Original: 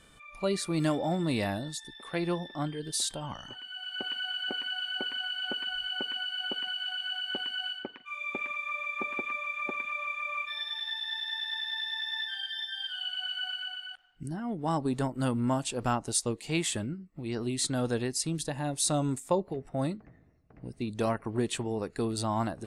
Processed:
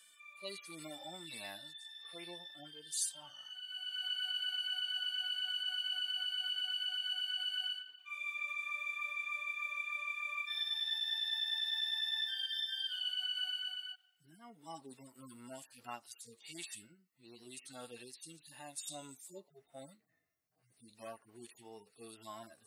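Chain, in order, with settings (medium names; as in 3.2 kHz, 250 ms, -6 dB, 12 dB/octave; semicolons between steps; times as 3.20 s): harmonic-percussive separation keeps harmonic; differentiator; trim +5 dB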